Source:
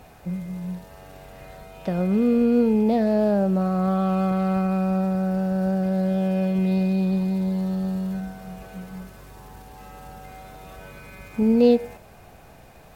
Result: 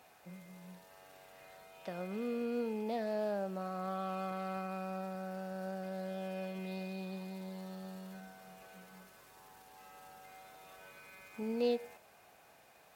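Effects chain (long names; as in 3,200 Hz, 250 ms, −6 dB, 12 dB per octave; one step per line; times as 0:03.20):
high-pass filter 860 Hz 6 dB per octave
level −8.5 dB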